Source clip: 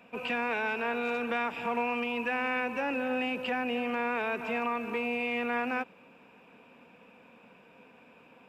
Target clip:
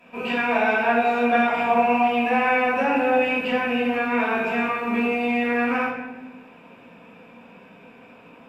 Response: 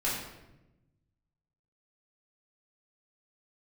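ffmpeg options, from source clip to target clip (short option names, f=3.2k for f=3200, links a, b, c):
-filter_complex "[0:a]asettb=1/sr,asplit=3[a][b][c];[a]atrim=end=0.494[d];[b]atrim=start=0.49:end=3.19,asetpts=PTS-STARTPTS,afade=t=in:d=0.004:c=qsin,afade=t=out:st=2.696:d=0.004:c=qsin,equalizer=f=700:t=o:w=0.46:g=9[e];[c]atrim=start=3.186[f];[d][e]acrossfade=d=0.004:c1=hsin:c2=qsin[g];[g][f]acrossfade=d=0.004:c1=qsin:c2=hsin[h];[1:a]atrim=start_sample=2205,asetrate=38367,aresample=44100[i];[h][i]afir=irnorm=-1:irlink=0"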